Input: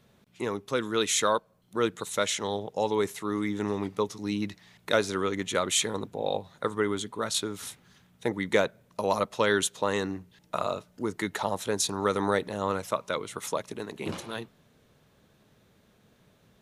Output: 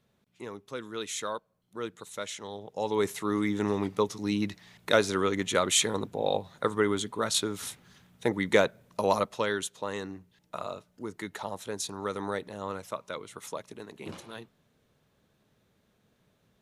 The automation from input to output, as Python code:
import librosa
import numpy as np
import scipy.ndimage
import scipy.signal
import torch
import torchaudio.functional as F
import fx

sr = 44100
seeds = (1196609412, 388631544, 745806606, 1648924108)

y = fx.gain(x, sr, db=fx.line((2.55, -9.5), (3.09, 1.5), (9.1, 1.5), (9.59, -7.0)))